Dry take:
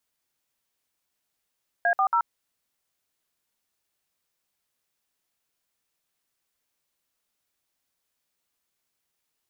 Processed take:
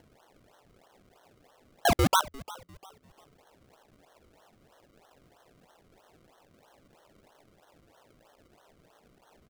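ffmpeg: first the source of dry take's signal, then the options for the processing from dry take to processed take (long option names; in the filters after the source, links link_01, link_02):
-f lavfi -i "aevalsrc='0.0841*clip(min(mod(t,0.139),0.081-mod(t,0.139))/0.002,0,1)*(eq(floor(t/0.139),0)*(sin(2*PI*697*mod(t,0.139))+sin(2*PI*1633*mod(t,0.139)))+eq(floor(t/0.139),1)*(sin(2*PI*770*mod(t,0.139))+sin(2*PI*1209*mod(t,0.139)))+eq(floor(t/0.139),2)*(sin(2*PI*941*mod(t,0.139))+sin(2*PI*1336*mod(t,0.139))))':duration=0.417:sample_rate=44100"
-filter_complex "[0:a]acrossover=split=440|1000[link_01][link_02][link_03];[link_02]acompressor=mode=upward:threshold=-33dB:ratio=2.5[link_04];[link_01][link_04][link_03]amix=inputs=3:normalize=0,acrusher=samples=35:mix=1:aa=0.000001:lfo=1:lforange=35:lforate=3.1,asplit=4[link_05][link_06][link_07][link_08];[link_06]adelay=349,afreqshift=-87,volume=-19.5dB[link_09];[link_07]adelay=698,afreqshift=-174,volume=-28.1dB[link_10];[link_08]adelay=1047,afreqshift=-261,volume=-36.8dB[link_11];[link_05][link_09][link_10][link_11]amix=inputs=4:normalize=0"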